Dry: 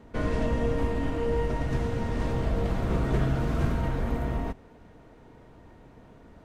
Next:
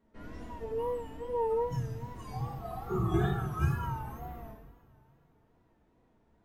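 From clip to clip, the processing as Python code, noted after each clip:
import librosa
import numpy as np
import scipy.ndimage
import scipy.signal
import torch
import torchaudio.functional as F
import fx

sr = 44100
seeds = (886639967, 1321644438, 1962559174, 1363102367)

y = fx.noise_reduce_blind(x, sr, reduce_db=22)
y = fx.rev_double_slope(y, sr, seeds[0], early_s=0.89, late_s=3.0, knee_db=-18, drr_db=-3.5)
y = fx.wow_flutter(y, sr, seeds[1], rate_hz=2.1, depth_cents=87.0)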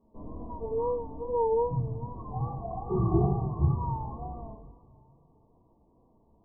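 y = fx.brickwall_lowpass(x, sr, high_hz=1200.0)
y = y * librosa.db_to_amplitude(4.0)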